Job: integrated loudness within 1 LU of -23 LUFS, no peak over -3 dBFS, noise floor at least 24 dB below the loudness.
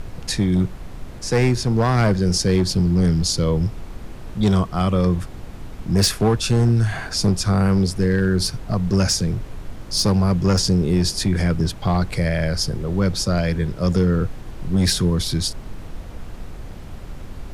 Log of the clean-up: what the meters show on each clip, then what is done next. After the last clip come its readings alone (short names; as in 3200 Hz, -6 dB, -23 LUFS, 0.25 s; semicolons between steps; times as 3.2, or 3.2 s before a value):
clipped 1.4%; flat tops at -11.5 dBFS; noise floor -36 dBFS; noise floor target -44 dBFS; loudness -20.0 LUFS; peak -11.5 dBFS; loudness target -23.0 LUFS
-> clip repair -11.5 dBFS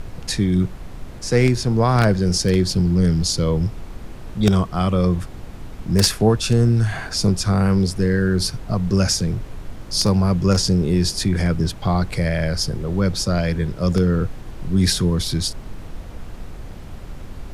clipped 0.0%; noise floor -36 dBFS; noise floor target -44 dBFS
-> noise print and reduce 8 dB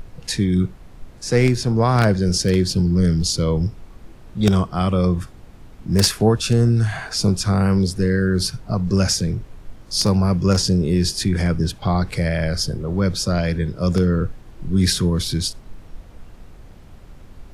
noise floor -43 dBFS; noise floor target -44 dBFS
-> noise print and reduce 6 dB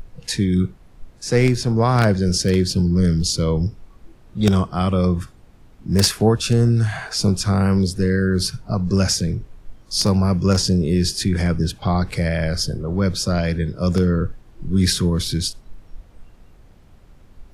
noise floor -48 dBFS; loudness -19.5 LUFS; peak -2.0 dBFS; loudness target -23.0 LUFS
-> gain -3.5 dB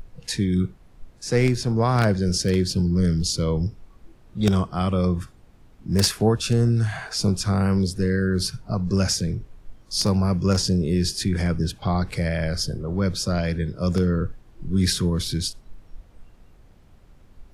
loudness -23.0 LUFS; peak -5.5 dBFS; noise floor -52 dBFS